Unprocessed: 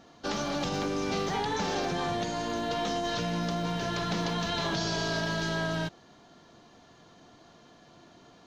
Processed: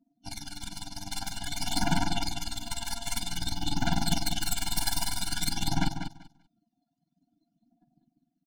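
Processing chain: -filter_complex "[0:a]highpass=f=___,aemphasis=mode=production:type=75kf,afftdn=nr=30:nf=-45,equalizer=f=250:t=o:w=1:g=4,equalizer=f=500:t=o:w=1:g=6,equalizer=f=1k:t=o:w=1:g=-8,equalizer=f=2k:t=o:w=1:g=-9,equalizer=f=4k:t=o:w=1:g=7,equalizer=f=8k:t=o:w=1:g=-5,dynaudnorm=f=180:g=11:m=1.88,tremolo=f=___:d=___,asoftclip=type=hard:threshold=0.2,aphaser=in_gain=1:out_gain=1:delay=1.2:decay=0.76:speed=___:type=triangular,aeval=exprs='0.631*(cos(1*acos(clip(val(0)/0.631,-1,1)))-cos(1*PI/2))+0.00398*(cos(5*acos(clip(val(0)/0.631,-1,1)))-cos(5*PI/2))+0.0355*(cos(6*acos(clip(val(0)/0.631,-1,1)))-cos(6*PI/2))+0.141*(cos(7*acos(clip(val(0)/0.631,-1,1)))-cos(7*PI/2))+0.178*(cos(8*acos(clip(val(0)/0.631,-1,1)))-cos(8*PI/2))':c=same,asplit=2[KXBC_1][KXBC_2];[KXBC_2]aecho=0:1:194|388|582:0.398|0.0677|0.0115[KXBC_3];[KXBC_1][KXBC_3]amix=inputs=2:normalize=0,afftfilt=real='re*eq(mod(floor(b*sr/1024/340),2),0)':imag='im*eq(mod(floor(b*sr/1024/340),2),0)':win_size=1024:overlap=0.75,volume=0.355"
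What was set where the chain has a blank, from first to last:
120, 20, 0.72, 0.51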